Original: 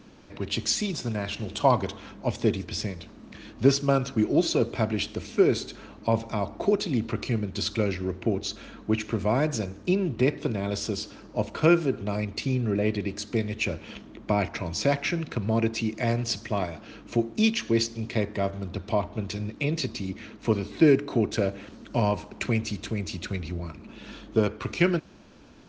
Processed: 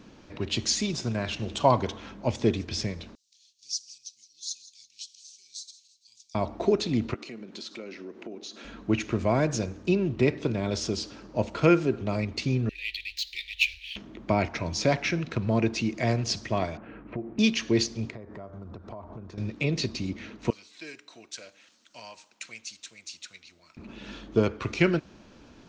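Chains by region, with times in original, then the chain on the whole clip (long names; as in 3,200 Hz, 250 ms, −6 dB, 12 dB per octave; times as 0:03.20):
0:03.15–0:06.35: inverse Chebyshev high-pass filter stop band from 1,500 Hz, stop band 60 dB + repeating echo 167 ms, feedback 48%, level −16.5 dB
0:07.14–0:08.65: high-pass filter 210 Hz 24 dB per octave + downward compressor 3 to 1, threshold −40 dBFS
0:12.69–0:13.96: running median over 5 samples + inverse Chebyshev band-stop filter 100–1,400 Hz + flat-topped bell 2,700 Hz +10 dB
0:16.77–0:17.39: low-pass filter 2,100 Hz 24 dB per octave + downward compressor 4 to 1, threshold −30 dBFS
0:18.10–0:19.38: downward compressor 16 to 1, threshold −37 dBFS + high shelf with overshoot 1,900 Hz −11 dB, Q 1.5
0:20.50–0:23.77: first difference + notch filter 400 Hz, Q 7.9
whole clip: no processing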